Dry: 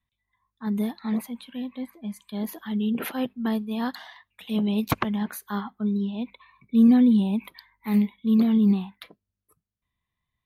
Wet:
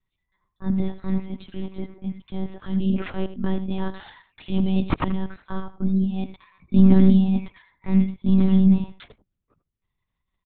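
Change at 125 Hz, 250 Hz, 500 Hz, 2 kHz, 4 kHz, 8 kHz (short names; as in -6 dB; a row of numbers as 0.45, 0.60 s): +10.0 dB, +1.5 dB, +3.5 dB, -2.0 dB, -2.5 dB, under -35 dB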